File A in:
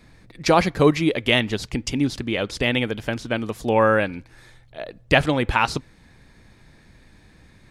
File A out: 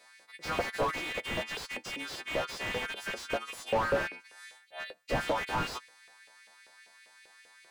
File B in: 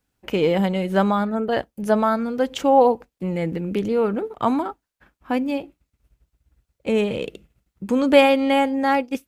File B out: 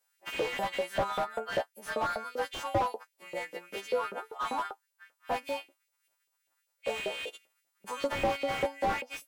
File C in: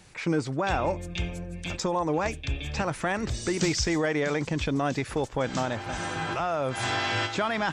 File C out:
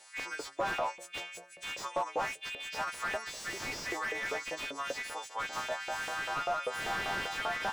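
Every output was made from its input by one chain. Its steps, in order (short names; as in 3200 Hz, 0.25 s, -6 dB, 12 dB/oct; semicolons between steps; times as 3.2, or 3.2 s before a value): frequency quantiser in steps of 2 st; LFO high-pass saw up 5.1 Hz 490–2700 Hz; slew limiter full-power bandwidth 91 Hz; gain -7 dB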